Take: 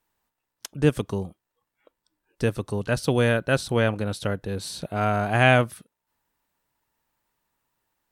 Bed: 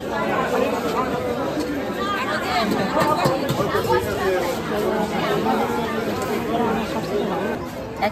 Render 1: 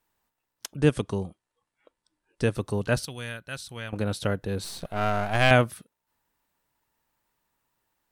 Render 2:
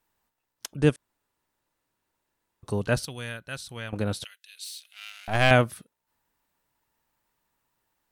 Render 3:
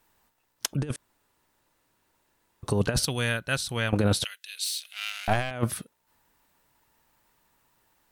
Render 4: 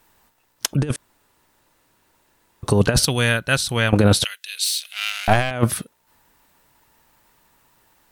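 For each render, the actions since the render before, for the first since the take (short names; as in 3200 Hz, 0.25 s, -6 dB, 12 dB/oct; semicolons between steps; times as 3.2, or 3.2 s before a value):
0.76–2.55 Chebyshev low-pass 11000 Hz, order 6; 3.05–3.93 passive tone stack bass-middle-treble 5-5-5; 4.64–5.51 half-wave gain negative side -12 dB
0.96–2.63 room tone; 4.24–5.28 Chebyshev high-pass 2700 Hz, order 3
in parallel at -2.5 dB: limiter -16.5 dBFS, peak gain reduction 11.5 dB; on the sum: negative-ratio compressor -23 dBFS, ratio -0.5
gain +8.5 dB; limiter -1 dBFS, peak gain reduction 2.5 dB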